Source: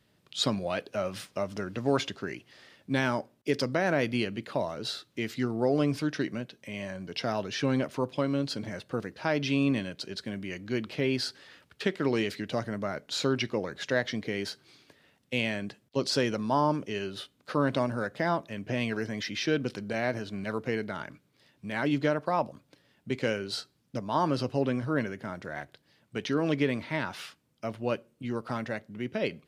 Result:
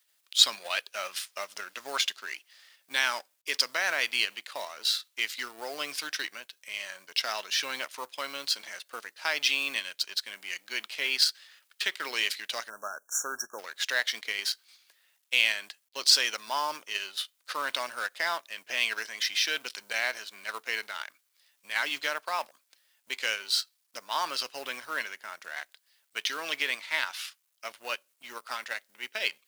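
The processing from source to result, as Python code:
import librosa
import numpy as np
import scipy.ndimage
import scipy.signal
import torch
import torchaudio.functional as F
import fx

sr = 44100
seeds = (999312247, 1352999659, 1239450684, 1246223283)

p1 = fx.law_mismatch(x, sr, coded='A')
p2 = fx.level_steps(p1, sr, step_db=11)
p3 = p1 + (p2 * 10.0 ** (-0.5 / 20.0))
p4 = scipy.signal.sosfilt(scipy.signal.butter(2, 1200.0, 'highpass', fs=sr, output='sos'), p3)
p5 = fx.dynamic_eq(p4, sr, hz=3400.0, q=0.85, threshold_db=-45.0, ratio=4.0, max_db=4)
p6 = fx.spec_erase(p5, sr, start_s=12.7, length_s=0.89, low_hz=1700.0, high_hz=5500.0)
y = fx.high_shelf(p6, sr, hz=5500.0, db=11.0)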